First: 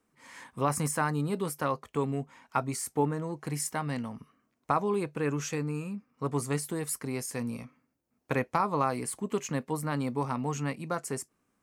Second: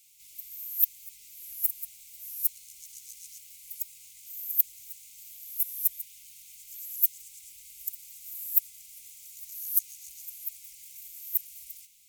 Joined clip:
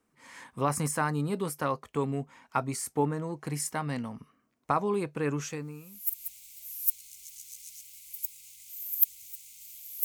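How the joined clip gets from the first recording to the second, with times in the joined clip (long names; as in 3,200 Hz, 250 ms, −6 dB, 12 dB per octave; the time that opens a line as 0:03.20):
first
0:05.81: continue with second from 0:01.38, crossfade 0.90 s quadratic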